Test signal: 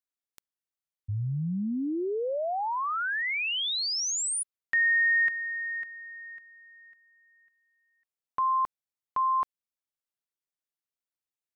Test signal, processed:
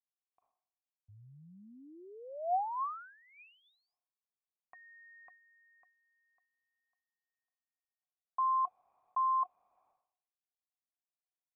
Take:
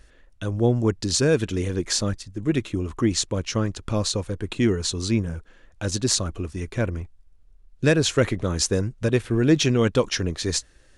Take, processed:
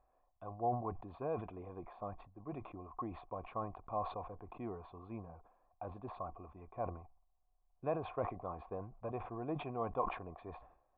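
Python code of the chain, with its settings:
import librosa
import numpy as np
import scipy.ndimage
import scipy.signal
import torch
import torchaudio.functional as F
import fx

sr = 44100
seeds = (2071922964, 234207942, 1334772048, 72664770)

y = fx.formant_cascade(x, sr, vowel='a')
y = fx.sustainer(y, sr, db_per_s=90.0)
y = y * 10.0 ** (2.0 / 20.0)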